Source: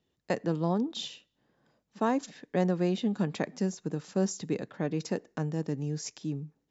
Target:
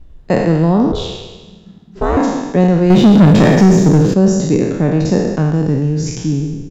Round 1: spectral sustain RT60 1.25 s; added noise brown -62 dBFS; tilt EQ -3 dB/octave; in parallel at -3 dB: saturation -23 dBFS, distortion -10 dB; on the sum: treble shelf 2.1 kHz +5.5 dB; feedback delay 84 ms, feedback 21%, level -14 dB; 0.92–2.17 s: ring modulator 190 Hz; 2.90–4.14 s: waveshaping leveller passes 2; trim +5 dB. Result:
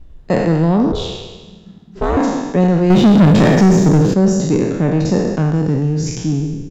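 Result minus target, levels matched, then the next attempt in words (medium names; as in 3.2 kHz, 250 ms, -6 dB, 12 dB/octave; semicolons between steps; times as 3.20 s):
saturation: distortion +15 dB
spectral sustain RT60 1.25 s; added noise brown -62 dBFS; tilt EQ -3 dB/octave; in parallel at -3 dB: saturation -11 dBFS, distortion -24 dB; on the sum: treble shelf 2.1 kHz +5.5 dB; feedback delay 84 ms, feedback 21%, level -14 dB; 0.92–2.17 s: ring modulator 190 Hz; 2.90–4.14 s: waveshaping leveller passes 2; trim +5 dB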